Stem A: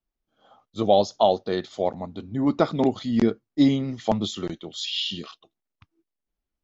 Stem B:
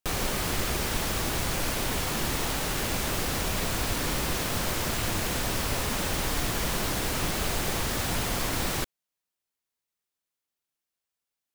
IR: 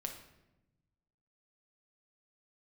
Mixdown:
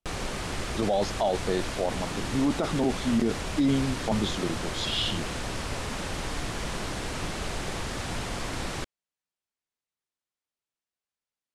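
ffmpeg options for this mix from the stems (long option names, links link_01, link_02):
-filter_complex "[0:a]volume=0dB[link_01];[1:a]lowpass=frequency=10000:width=0.5412,lowpass=frequency=10000:width=1.3066,volume=-3dB[link_02];[link_01][link_02]amix=inputs=2:normalize=0,highshelf=frequency=5000:gain=-5,alimiter=limit=-16.5dB:level=0:latency=1:release=13"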